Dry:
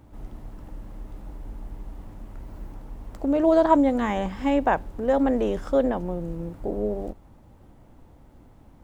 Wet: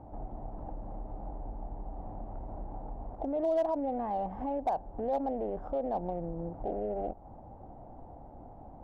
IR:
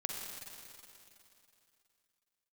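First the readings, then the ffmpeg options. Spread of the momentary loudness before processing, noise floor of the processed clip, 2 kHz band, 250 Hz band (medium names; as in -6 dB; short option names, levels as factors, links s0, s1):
23 LU, -50 dBFS, -22.5 dB, -13.5 dB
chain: -af "aemphasis=mode=production:type=75kf,acompressor=threshold=0.0126:ratio=2.5,alimiter=level_in=1.88:limit=0.0631:level=0:latency=1:release=48,volume=0.531,lowpass=f=750:t=q:w=4.9,aeval=exprs='0.0708*(cos(1*acos(clip(val(0)/0.0708,-1,1)))-cos(1*PI/2))+0.000708*(cos(8*acos(clip(val(0)/0.0708,-1,1)))-cos(8*PI/2))':c=same"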